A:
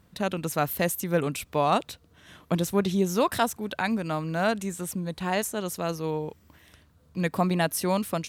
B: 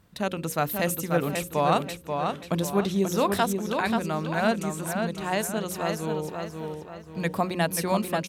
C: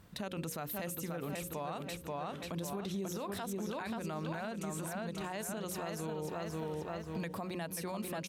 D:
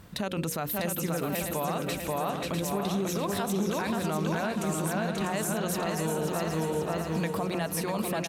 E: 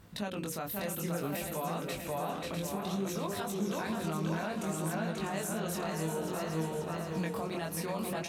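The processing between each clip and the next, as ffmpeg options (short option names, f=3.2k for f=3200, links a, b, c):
-filter_complex "[0:a]bandreject=f=60:t=h:w=6,bandreject=f=120:t=h:w=6,bandreject=f=180:t=h:w=6,bandreject=f=240:t=h:w=6,bandreject=f=300:t=h:w=6,bandreject=f=360:t=h:w=6,bandreject=f=420:t=h:w=6,bandreject=f=480:t=h:w=6,bandreject=f=540:t=h:w=6,asplit=2[a][b];[b]adelay=535,lowpass=f=4.9k:p=1,volume=-5dB,asplit=2[c][d];[d]adelay=535,lowpass=f=4.9k:p=1,volume=0.42,asplit=2[e][f];[f]adelay=535,lowpass=f=4.9k:p=1,volume=0.42,asplit=2[g][h];[h]adelay=535,lowpass=f=4.9k:p=1,volume=0.42,asplit=2[i][j];[j]adelay=535,lowpass=f=4.9k:p=1,volume=0.42[k];[a][c][e][g][i][k]amix=inputs=6:normalize=0"
-af "acompressor=threshold=-33dB:ratio=6,alimiter=level_in=8dB:limit=-24dB:level=0:latency=1:release=43,volume=-8dB,volume=1.5dB"
-af "aecho=1:1:648|1296|1944|2592|3240:0.501|0.205|0.0842|0.0345|0.0142,volume=8.5dB"
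-af "flanger=delay=18:depth=7.2:speed=0.59,volume=-2.5dB"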